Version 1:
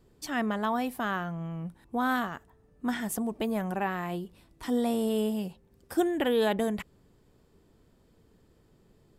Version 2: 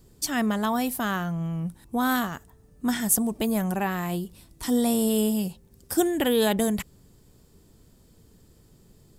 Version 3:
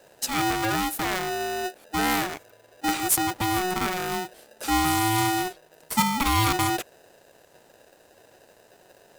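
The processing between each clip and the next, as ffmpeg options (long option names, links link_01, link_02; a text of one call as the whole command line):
ffmpeg -i in.wav -af "bass=frequency=250:gain=6,treble=frequency=4000:gain=13,volume=2dB" out.wav
ffmpeg -i in.wav -af "aeval=exprs='val(0)*sgn(sin(2*PI*550*n/s))':channel_layout=same" out.wav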